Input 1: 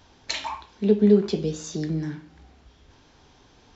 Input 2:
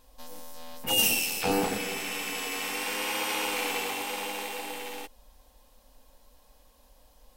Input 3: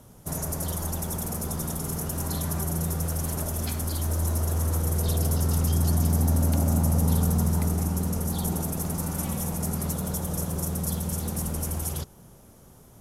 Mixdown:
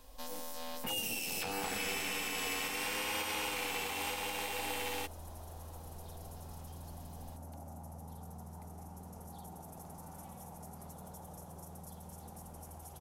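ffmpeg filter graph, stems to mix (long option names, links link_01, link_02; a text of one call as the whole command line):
ffmpeg -i stem1.wav -i stem2.wav -i stem3.wav -filter_complex "[1:a]volume=2dB[link_01];[2:a]adelay=1000,volume=-15.5dB,equalizer=frequency=800:width_type=o:width=0.8:gain=13.5,acompressor=threshold=-47dB:ratio=4,volume=0dB[link_02];[link_01][link_02]amix=inputs=2:normalize=0,acrossover=split=120|760[link_03][link_04][link_05];[link_03]acompressor=threshold=-45dB:ratio=4[link_06];[link_04]acompressor=threshold=-41dB:ratio=4[link_07];[link_05]acompressor=threshold=-32dB:ratio=4[link_08];[link_06][link_07][link_08]amix=inputs=3:normalize=0,alimiter=level_in=2dB:limit=-24dB:level=0:latency=1:release=363,volume=-2dB" out.wav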